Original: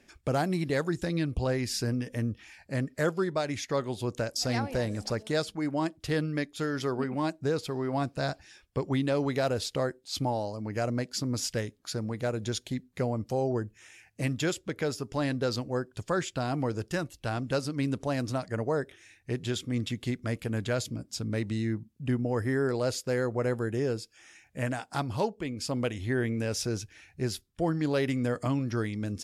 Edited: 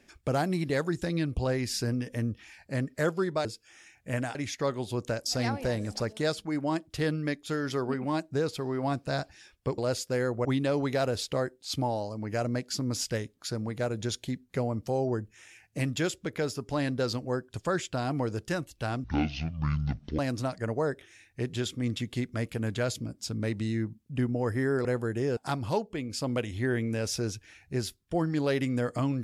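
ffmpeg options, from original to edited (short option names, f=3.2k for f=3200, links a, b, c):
-filter_complex "[0:a]asplit=9[a][b][c][d][e][f][g][h][i];[a]atrim=end=3.452[j];[b]atrim=start=23.938:end=24.842[k];[c]atrim=start=3.448:end=8.882[l];[d]atrim=start=22.748:end=23.422[m];[e]atrim=start=8.878:end=17.474[n];[f]atrim=start=17.47:end=18.09,asetpts=PTS-STARTPTS,asetrate=23814,aresample=44100,atrim=end_sample=50633,asetpts=PTS-STARTPTS[o];[g]atrim=start=18.086:end=22.752[p];[h]atrim=start=23.418:end=23.942[q];[i]atrim=start=24.838[r];[j][k]acrossfade=d=0.004:c1=hsin:c2=hsin[s];[s][l]acrossfade=d=0.004:c1=hsin:c2=hsin[t];[t][m]acrossfade=d=0.004:c1=hsin:c2=hsin[u];[u][n]acrossfade=d=0.004:c1=hsin:c2=hsin[v];[v][o]acrossfade=d=0.004:c1=hsin:c2=hsin[w];[w][p]acrossfade=d=0.004:c1=hsin:c2=hsin[x];[x][q]acrossfade=d=0.004:c1=hsin:c2=hsin[y];[y][r]acrossfade=d=0.004:c1=hsin:c2=hsin"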